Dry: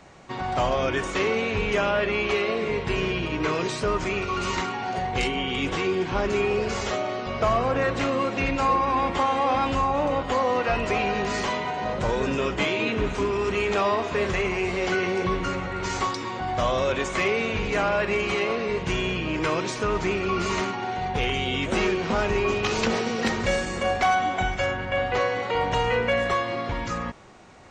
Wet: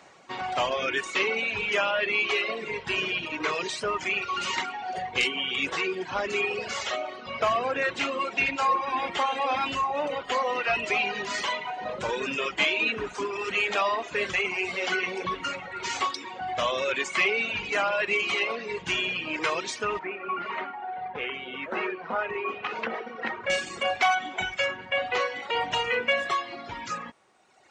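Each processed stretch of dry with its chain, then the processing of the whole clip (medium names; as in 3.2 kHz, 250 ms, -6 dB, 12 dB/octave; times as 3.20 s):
19.99–23.50 s: Chebyshev low-pass 1.5 kHz + bass shelf 150 Hz -11 dB
whole clip: reverb removal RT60 1.9 s; dynamic bell 2.7 kHz, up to +6 dB, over -45 dBFS, Q 1.5; high-pass 510 Hz 6 dB/octave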